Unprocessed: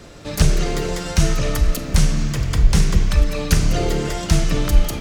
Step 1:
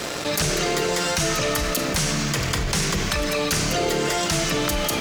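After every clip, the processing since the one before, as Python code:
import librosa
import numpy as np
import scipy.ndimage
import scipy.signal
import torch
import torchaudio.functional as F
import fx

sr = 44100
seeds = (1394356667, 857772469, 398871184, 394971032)

y = fx.highpass(x, sr, hz=500.0, slope=6)
y = fx.leveller(y, sr, passes=2)
y = fx.env_flatten(y, sr, amount_pct=70)
y = y * librosa.db_to_amplitude(-6.5)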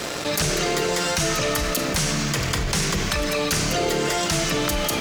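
y = x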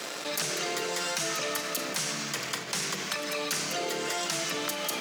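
y = scipy.signal.sosfilt(scipy.signal.butter(4, 160.0, 'highpass', fs=sr, output='sos'), x)
y = fx.low_shelf(y, sr, hz=420.0, db=-8.0)
y = y * librosa.db_to_amplitude(-6.5)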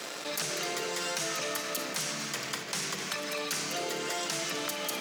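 y = x + 10.0 ** (-11.5 / 20.0) * np.pad(x, (int(256 * sr / 1000.0), 0))[:len(x)]
y = y * librosa.db_to_amplitude(-2.5)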